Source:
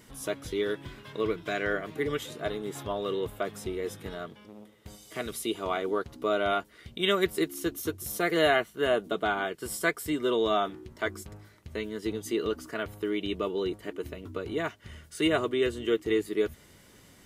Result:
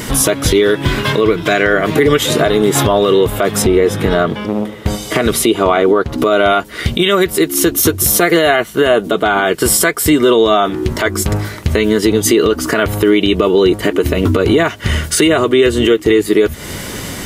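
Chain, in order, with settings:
0:03.62–0:06.18: high-shelf EQ 3,800 Hz −9.5 dB
downward compressor 6 to 1, threshold −37 dBFS, peak gain reduction 17 dB
boost into a limiter +32 dB
level −1 dB

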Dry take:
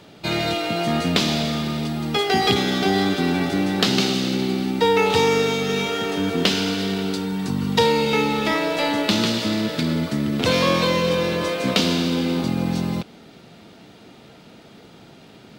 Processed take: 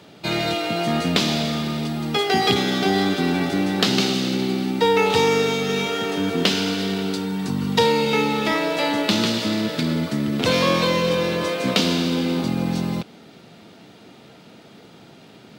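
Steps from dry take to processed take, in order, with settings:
high-pass filter 90 Hz

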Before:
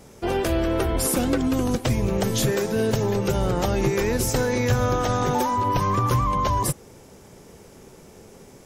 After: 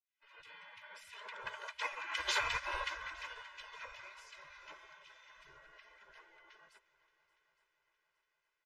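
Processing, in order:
fade in at the beginning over 0.52 s
source passing by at 0:02.37, 12 m/s, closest 5.1 metres
low-pass filter 1,500 Hz 12 dB per octave
gate on every frequency bin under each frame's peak −30 dB weak
mains-hum notches 60/120/180 Hz
comb filter 2 ms, depth 99%
on a send: echo machine with several playback heads 287 ms, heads second and third, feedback 54%, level −20 dB
on the sum: expander for the loud parts 1.5 to 1, over −58 dBFS
level +11 dB

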